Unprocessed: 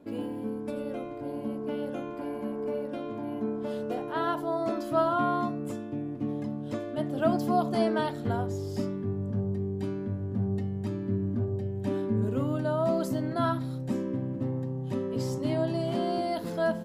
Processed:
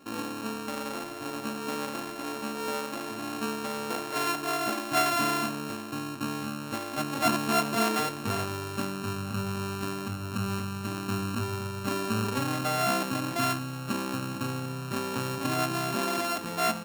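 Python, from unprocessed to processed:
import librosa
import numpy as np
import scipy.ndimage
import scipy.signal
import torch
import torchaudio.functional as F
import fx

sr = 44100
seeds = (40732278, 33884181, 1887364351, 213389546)

y = np.r_[np.sort(x[:len(x) // 32 * 32].reshape(-1, 32), axis=1).ravel(), x[len(x) // 32 * 32:]]
y = fx.low_shelf(y, sr, hz=140.0, db=-5.0)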